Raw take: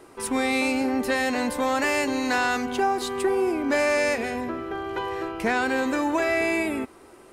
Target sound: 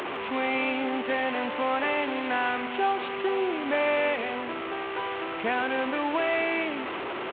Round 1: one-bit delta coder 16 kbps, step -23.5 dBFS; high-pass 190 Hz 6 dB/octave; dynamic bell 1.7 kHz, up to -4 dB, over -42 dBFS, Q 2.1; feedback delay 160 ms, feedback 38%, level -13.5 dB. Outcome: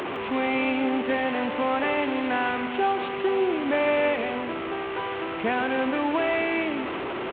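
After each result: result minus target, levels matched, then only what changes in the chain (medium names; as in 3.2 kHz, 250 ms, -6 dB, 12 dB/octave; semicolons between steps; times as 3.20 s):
echo-to-direct +9 dB; 250 Hz band +3.0 dB
change: feedback delay 160 ms, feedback 38%, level -22.5 dB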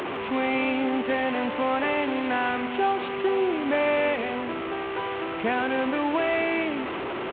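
250 Hz band +3.0 dB
change: high-pass 510 Hz 6 dB/octave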